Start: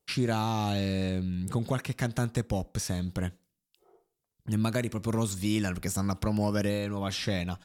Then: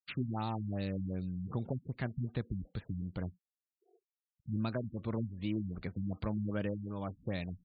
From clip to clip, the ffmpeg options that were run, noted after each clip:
-af "afftfilt=real='re*gte(hypot(re,im),0.00316)':imag='im*gte(hypot(re,im),0.00316)':win_size=1024:overlap=0.75,afftfilt=real='re*lt(b*sr/1024,240*pow(4800/240,0.5+0.5*sin(2*PI*2.6*pts/sr)))':imag='im*lt(b*sr/1024,240*pow(4800/240,0.5+0.5*sin(2*PI*2.6*pts/sr)))':win_size=1024:overlap=0.75,volume=0.447"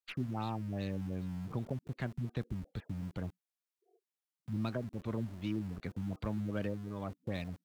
-filter_complex "[0:a]acrossover=split=280|1200[s0][s1][s2];[s0]aeval=exprs='val(0)*gte(abs(val(0)),0.00398)':c=same[s3];[s2]aeval=exprs='0.0282*(cos(1*acos(clip(val(0)/0.0282,-1,1)))-cos(1*PI/2))+0.00141*(cos(8*acos(clip(val(0)/0.0282,-1,1)))-cos(8*PI/2))':c=same[s4];[s3][s1][s4]amix=inputs=3:normalize=0,volume=0.891"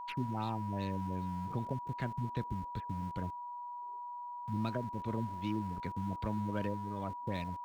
-af "aeval=exprs='val(0)+0.00891*sin(2*PI*970*n/s)':c=same"

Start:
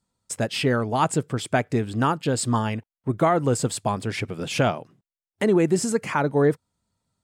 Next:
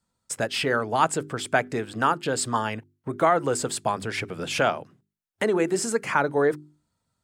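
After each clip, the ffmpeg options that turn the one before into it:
-filter_complex "[0:a]equalizer=f=1500:t=o:w=0.62:g=4,bandreject=f=50:t=h:w=6,bandreject=f=100:t=h:w=6,bandreject=f=150:t=h:w=6,bandreject=f=200:t=h:w=6,bandreject=f=250:t=h:w=6,bandreject=f=300:t=h:w=6,bandreject=f=350:t=h:w=6,bandreject=f=400:t=h:w=6,acrossover=split=320|4900[s0][s1][s2];[s0]acompressor=threshold=0.02:ratio=6[s3];[s3][s1][s2]amix=inputs=3:normalize=0"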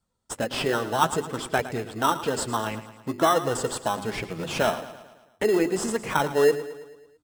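-filter_complex "[0:a]flanger=delay=1.3:depth=5.1:regen=44:speed=0.57:shape=triangular,asplit=2[s0][s1];[s1]acrusher=samples=19:mix=1:aa=0.000001,volume=0.668[s2];[s0][s2]amix=inputs=2:normalize=0,aecho=1:1:110|220|330|440|550|660:0.2|0.11|0.0604|0.0332|0.0183|0.01"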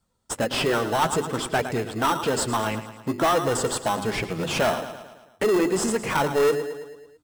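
-af "asoftclip=type=tanh:threshold=0.0891,volume=1.78"

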